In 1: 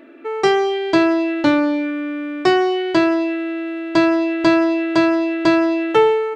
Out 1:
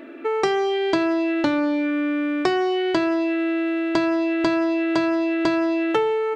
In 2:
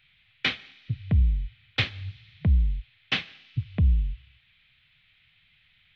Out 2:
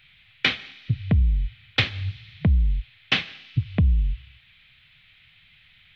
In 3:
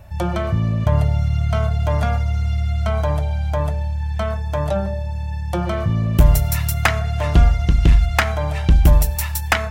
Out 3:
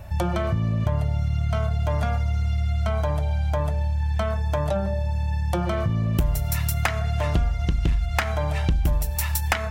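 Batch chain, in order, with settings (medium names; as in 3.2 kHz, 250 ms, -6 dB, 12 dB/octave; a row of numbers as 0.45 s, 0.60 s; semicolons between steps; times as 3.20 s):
compression 4:1, threshold -24 dBFS; peak normalisation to -6 dBFS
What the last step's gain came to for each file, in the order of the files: +4.0 dB, +7.5 dB, +3.0 dB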